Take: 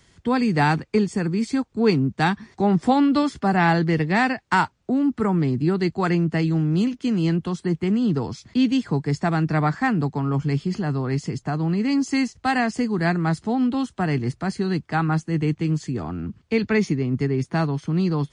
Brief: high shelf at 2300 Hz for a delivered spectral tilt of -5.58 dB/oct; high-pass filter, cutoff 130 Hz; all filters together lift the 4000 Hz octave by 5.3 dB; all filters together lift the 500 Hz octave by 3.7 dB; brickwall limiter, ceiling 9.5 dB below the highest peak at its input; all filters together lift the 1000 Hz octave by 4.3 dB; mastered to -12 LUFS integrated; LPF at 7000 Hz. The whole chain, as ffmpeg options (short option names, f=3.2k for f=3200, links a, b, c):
-af "highpass=130,lowpass=7k,equalizer=f=500:t=o:g=4,equalizer=f=1k:t=o:g=3.5,highshelf=f=2.3k:g=3,equalizer=f=4k:t=o:g=4,volume=11dB,alimiter=limit=-1.5dB:level=0:latency=1"